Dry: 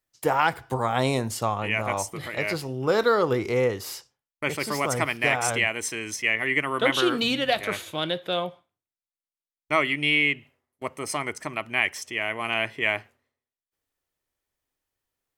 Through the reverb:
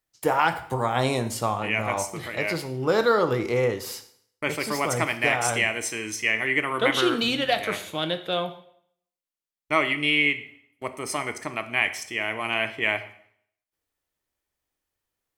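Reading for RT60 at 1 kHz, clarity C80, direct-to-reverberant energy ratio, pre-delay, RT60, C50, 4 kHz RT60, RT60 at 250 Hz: 0.65 s, 16.0 dB, 9.0 dB, 4 ms, 0.65 s, 13.0 dB, 0.60 s, 0.65 s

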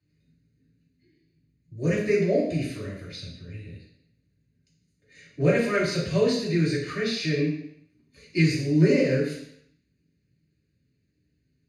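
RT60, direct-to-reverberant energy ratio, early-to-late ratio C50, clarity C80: 0.70 s, -7.0 dB, 3.5 dB, 7.0 dB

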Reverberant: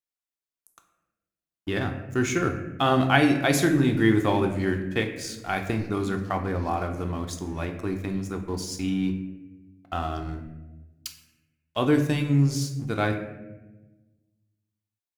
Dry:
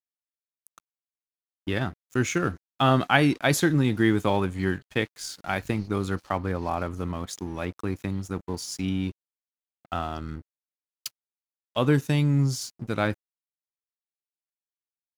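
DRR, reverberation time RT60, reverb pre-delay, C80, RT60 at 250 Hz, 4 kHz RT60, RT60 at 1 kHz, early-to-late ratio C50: 4.0 dB, 1.1 s, 3 ms, 10.0 dB, 1.6 s, 0.65 s, 0.85 s, 8.0 dB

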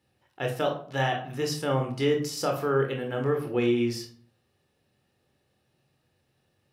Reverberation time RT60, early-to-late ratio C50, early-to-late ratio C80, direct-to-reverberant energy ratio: 0.50 s, 8.5 dB, 13.5 dB, 2.0 dB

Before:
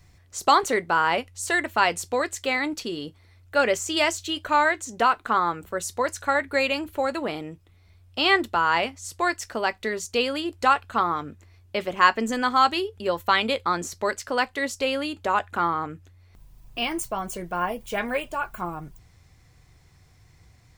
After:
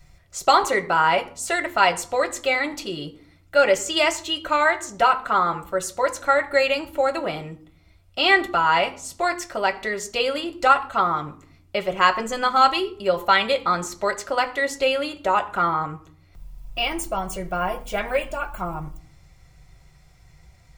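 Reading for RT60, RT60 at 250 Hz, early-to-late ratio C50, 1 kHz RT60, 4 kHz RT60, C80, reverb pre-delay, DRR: 0.50 s, 0.80 s, 15.5 dB, 0.50 s, 0.35 s, 18.5 dB, 3 ms, 3.0 dB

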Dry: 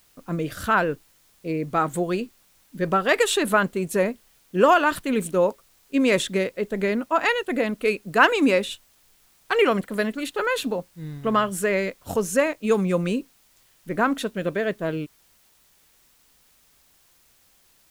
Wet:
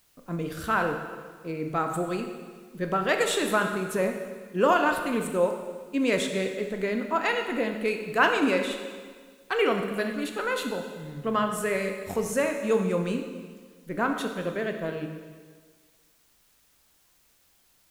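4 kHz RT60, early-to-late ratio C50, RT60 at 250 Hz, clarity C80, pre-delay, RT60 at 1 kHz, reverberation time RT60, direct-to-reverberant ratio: 1.5 s, 6.0 dB, 1.6 s, 7.5 dB, 7 ms, 1.6 s, 1.6 s, 4.0 dB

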